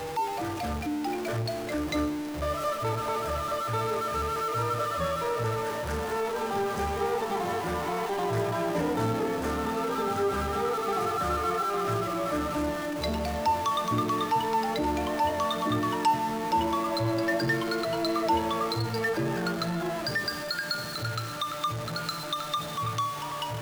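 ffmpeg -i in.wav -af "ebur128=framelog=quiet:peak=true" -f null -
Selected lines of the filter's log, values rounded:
Integrated loudness:
  I:         -29.0 LUFS
  Threshold: -39.0 LUFS
Loudness range:
  LRA:         3.3 LU
  Threshold: -48.7 LUFS
  LRA low:   -30.5 LUFS
  LRA high:  -27.2 LUFS
True peak:
  Peak:      -15.1 dBFS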